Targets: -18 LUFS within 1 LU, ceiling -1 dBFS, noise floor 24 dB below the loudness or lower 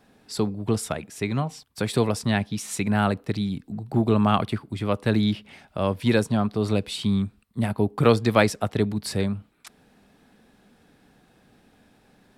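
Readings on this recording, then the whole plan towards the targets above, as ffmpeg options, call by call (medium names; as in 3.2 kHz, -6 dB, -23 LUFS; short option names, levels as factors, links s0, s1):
loudness -25.0 LUFS; peak level -4.0 dBFS; loudness target -18.0 LUFS
-> -af "volume=2.24,alimiter=limit=0.891:level=0:latency=1"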